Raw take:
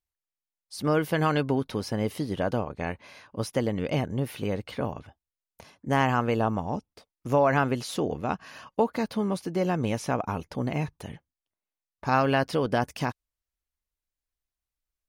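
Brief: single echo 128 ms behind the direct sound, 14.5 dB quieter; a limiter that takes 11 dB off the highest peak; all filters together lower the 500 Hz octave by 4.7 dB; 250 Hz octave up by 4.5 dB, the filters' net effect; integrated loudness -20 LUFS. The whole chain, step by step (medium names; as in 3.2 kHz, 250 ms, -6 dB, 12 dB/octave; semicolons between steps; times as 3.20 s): peaking EQ 250 Hz +7.5 dB; peaking EQ 500 Hz -8 dB; peak limiter -19.5 dBFS; delay 128 ms -14.5 dB; trim +11.5 dB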